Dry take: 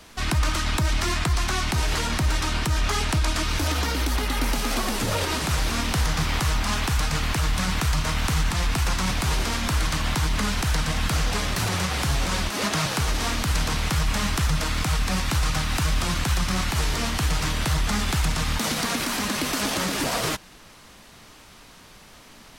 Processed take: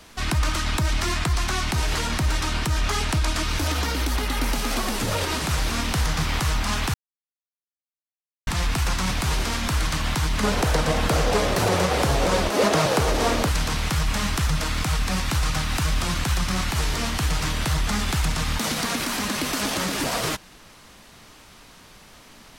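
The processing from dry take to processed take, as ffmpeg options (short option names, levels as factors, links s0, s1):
-filter_complex "[0:a]asettb=1/sr,asplit=3[s0][s1][s2];[s0]atrim=end=10.434[s3];[s1]atrim=start=10.43:end=13.49,asetpts=PTS-STARTPTS,afade=t=in:d=0.004:c=qsin,afade=t=out:st=3.056:d=0.004:c=qsin,equalizer=f=500:t=o:w=1.5:g=14[s4];[s2]atrim=start=13.486[s5];[s3][s4]acrossfade=d=0.004:c1=hsin:c2=qsin[s6];[s6][s5]acrossfade=d=0.004:c1=qsin:c2=hsin,asplit=3[s7][s8][s9];[s7]atrim=end=6.94,asetpts=PTS-STARTPTS,afade=t=out:st=6.936:d=0.004:c=hsin[s10];[s8]atrim=start=6.94:end=8.47,asetpts=PTS-STARTPTS,volume=0[s11];[s9]atrim=start=8.47,asetpts=PTS-STARTPTS,afade=t=in:d=0.004:c=hsin[s12];[s10][s11][s12]concat=n=3:v=0:a=1"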